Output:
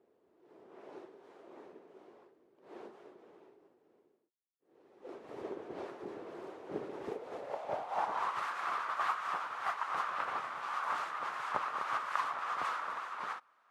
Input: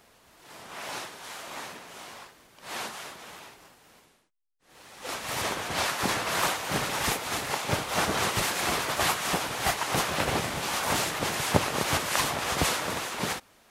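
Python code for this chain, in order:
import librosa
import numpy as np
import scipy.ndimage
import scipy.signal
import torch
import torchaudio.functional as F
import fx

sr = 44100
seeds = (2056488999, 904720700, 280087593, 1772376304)

y = fx.clip_hard(x, sr, threshold_db=-29.5, at=(5.98, 6.67))
y = fx.filter_sweep_bandpass(y, sr, from_hz=380.0, to_hz=1200.0, start_s=7.03, end_s=8.42, q=3.8)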